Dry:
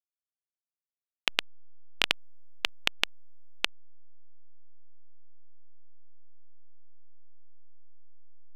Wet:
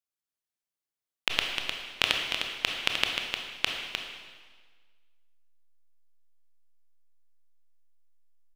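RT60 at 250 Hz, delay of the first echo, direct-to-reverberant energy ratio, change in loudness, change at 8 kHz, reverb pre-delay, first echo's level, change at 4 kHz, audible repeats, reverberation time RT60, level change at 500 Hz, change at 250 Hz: 1.5 s, 305 ms, 0.0 dB, +1.5 dB, +3.0 dB, 17 ms, −6.5 dB, +3.0 dB, 1, 1.5 s, +3.5 dB, +3.0 dB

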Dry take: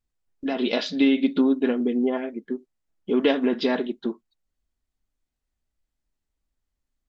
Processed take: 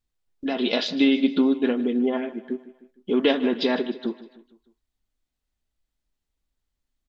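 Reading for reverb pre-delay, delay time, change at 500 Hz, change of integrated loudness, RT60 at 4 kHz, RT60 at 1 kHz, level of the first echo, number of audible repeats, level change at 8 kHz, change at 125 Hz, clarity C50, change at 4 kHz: no reverb audible, 153 ms, 0.0 dB, +0.5 dB, no reverb audible, no reverb audible, −17.0 dB, 3, can't be measured, 0.0 dB, no reverb audible, +3.5 dB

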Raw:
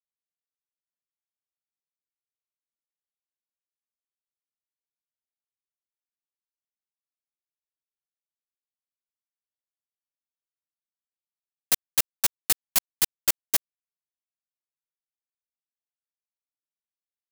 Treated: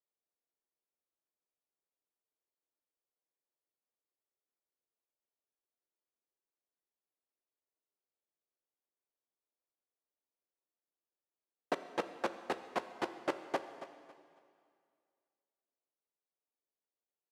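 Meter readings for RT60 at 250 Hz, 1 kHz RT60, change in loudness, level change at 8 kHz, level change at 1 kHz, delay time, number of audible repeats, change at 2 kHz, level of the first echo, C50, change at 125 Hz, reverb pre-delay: 2.1 s, 2.1 s, −15.5 dB, −32.0 dB, +2.0 dB, 276 ms, 2, −7.5 dB, −13.5 dB, 9.5 dB, −8.5 dB, 7 ms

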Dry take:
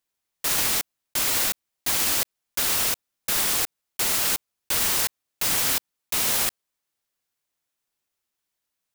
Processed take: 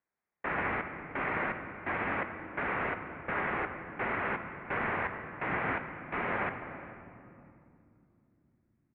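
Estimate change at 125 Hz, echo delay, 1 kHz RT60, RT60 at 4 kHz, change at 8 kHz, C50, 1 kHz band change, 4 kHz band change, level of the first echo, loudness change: 0.0 dB, 409 ms, 2.4 s, 1.5 s, below −40 dB, 7.5 dB, +1.0 dB, −27.5 dB, −22.0 dB, −11.5 dB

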